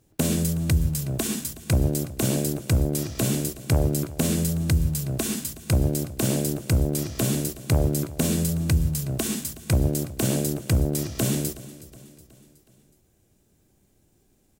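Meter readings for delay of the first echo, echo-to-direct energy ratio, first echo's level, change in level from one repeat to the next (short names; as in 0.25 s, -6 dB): 0.369 s, -17.0 dB, -18.0 dB, -6.0 dB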